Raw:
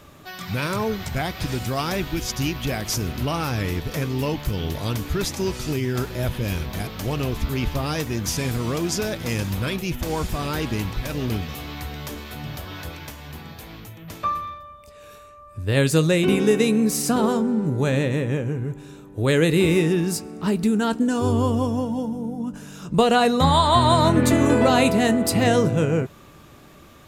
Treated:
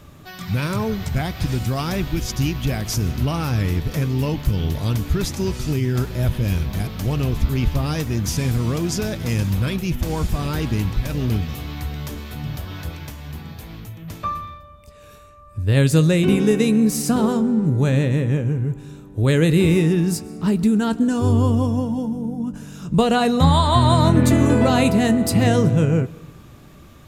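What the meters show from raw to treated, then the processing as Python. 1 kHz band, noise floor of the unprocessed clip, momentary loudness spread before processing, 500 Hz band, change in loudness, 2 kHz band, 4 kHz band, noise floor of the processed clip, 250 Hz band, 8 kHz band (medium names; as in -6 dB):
-1.5 dB, -46 dBFS, 16 LU, -0.5 dB, +2.5 dB, -1.5 dB, -1.0 dB, -44 dBFS, +3.0 dB, -0.5 dB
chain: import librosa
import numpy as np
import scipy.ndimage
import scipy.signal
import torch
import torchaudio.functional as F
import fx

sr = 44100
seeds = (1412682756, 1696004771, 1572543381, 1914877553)

y = fx.bass_treble(x, sr, bass_db=8, treble_db=1)
y = fx.rev_freeverb(y, sr, rt60_s=1.1, hf_ratio=0.8, predelay_ms=90, drr_db=20.0)
y = F.gain(torch.from_numpy(y), -1.5).numpy()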